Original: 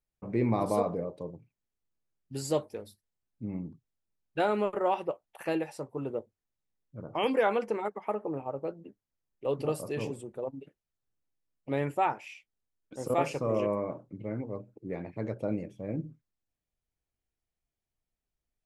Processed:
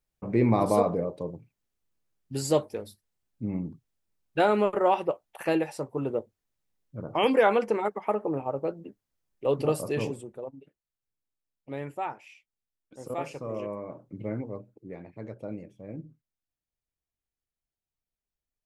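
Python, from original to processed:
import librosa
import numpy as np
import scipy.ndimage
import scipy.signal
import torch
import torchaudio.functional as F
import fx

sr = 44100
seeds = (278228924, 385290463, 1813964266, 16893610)

y = fx.gain(x, sr, db=fx.line((9.99, 5.0), (10.61, -5.5), (13.84, -5.5), (14.22, 4.0), (14.98, -5.5)))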